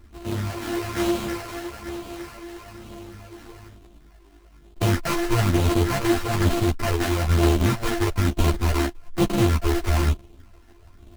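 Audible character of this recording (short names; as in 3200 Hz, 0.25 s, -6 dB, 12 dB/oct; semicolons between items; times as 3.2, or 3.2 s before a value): a buzz of ramps at a fixed pitch in blocks of 128 samples; phasing stages 8, 1.1 Hz, lowest notch 150–2100 Hz; aliases and images of a low sample rate 3500 Hz, jitter 20%; a shimmering, thickened sound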